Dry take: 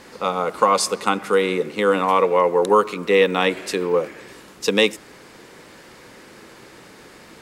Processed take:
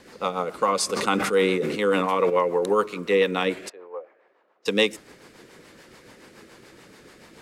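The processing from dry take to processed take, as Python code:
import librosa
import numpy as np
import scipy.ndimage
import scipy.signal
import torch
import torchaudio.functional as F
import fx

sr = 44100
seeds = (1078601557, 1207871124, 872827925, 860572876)

y = fx.ladder_bandpass(x, sr, hz=820.0, resonance_pct=40, at=(3.68, 4.65), fade=0.02)
y = fx.rotary(y, sr, hz=7.0)
y = fx.sustainer(y, sr, db_per_s=34.0, at=(0.89, 2.29), fade=0.02)
y = y * librosa.db_to_amplitude(-2.5)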